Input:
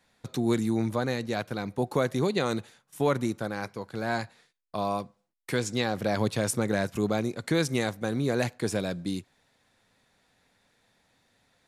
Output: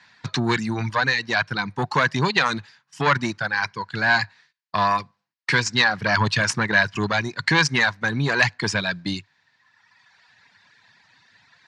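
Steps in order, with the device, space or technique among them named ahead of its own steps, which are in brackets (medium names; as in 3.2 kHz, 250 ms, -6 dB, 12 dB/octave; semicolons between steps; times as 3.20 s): reverb removal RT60 1.5 s; guitar amplifier (valve stage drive 20 dB, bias 0.4; tone controls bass +9 dB, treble +11 dB; cabinet simulation 100–4100 Hz, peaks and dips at 100 Hz +5 dB, 150 Hz +5 dB, 520 Hz -5 dB, 980 Hz +9 dB, 1.7 kHz +8 dB, 3.5 kHz -7 dB); tilt shelf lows -9.5 dB, about 890 Hz; trim +9 dB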